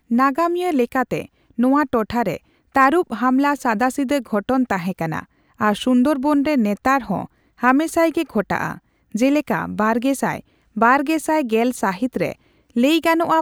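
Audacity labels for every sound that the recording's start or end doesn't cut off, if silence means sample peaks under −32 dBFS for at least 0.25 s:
1.590000	2.370000	sound
2.750000	5.220000	sound
5.600000	7.250000	sound
7.620000	8.770000	sound
9.150000	10.400000	sound
10.770000	12.330000	sound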